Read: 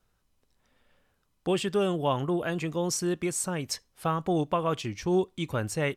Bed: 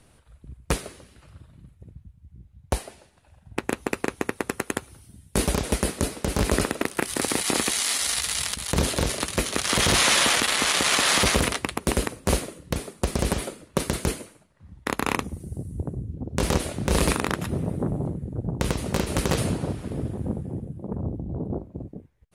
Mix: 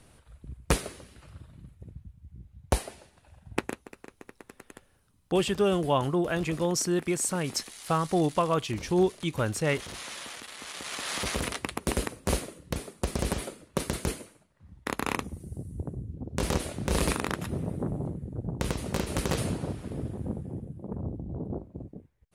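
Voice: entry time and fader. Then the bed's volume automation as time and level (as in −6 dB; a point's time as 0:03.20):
3.85 s, +1.5 dB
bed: 0:03.58 0 dB
0:03.89 −21 dB
0:10.53 −21 dB
0:11.69 −5 dB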